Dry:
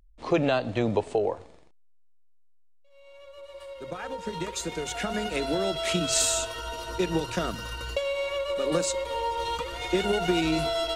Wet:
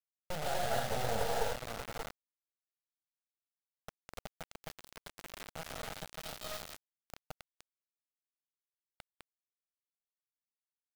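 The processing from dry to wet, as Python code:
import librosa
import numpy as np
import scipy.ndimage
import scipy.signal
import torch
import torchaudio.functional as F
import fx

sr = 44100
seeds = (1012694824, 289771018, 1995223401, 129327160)

p1 = fx.doppler_pass(x, sr, speed_mps=19, closest_m=7.4, pass_at_s=2.21)
p2 = fx.quant_companded(p1, sr, bits=2)
p3 = p1 + F.gain(torch.from_numpy(p2), -7.0).numpy()
p4 = fx.bass_treble(p3, sr, bass_db=0, treble_db=-12)
p5 = p4 + 10.0 ** (-9.5 / 20.0) * np.pad(p4, (int(584 * sr / 1000.0), 0))[:len(p4)]
p6 = fx.rev_gated(p5, sr, seeds[0], gate_ms=320, shape='rising', drr_db=-5.5)
p7 = np.maximum(p6, 0.0)
p8 = fx.fixed_phaser(p7, sr, hz=1600.0, stages=8)
p9 = fx.dynamic_eq(p8, sr, hz=790.0, q=2.2, threshold_db=-56.0, ratio=4.0, max_db=4)
p10 = fx.quant_dither(p9, sr, seeds[1], bits=6, dither='none')
y = F.gain(torch.from_numpy(p10), -2.5).numpy()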